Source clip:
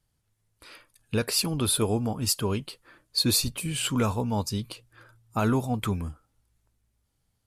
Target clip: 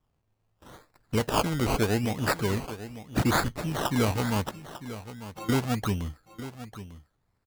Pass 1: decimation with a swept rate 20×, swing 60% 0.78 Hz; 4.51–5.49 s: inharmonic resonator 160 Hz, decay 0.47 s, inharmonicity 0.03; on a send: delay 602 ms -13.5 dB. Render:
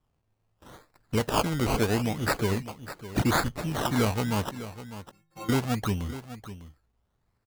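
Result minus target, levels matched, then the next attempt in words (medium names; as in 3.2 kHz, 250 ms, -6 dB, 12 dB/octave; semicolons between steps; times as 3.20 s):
echo 296 ms early
decimation with a swept rate 20×, swing 60% 0.78 Hz; 4.51–5.49 s: inharmonic resonator 160 Hz, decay 0.47 s, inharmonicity 0.03; on a send: delay 898 ms -13.5 dB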